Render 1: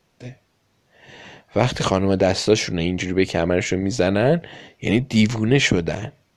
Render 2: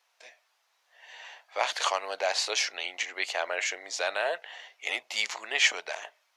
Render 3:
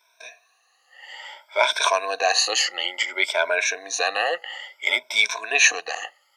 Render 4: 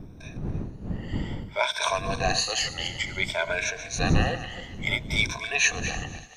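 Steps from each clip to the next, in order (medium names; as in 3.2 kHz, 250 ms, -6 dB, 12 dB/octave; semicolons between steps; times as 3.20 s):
high-pass 740 Hz 24 dB/octave; trim -3 dB
drifting ripple filter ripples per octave 1.6, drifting +0.58 Hz, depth 21 dB; trim +3.5 dB
backward echo that repeats 144 ms, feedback 44%, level -11 dB; wind noise 170 Hz -26 dBFS; feedback echo behind a high-pass 115 ms, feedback 80%, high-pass 4.2 kHz, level -20 dB; trim -6 dB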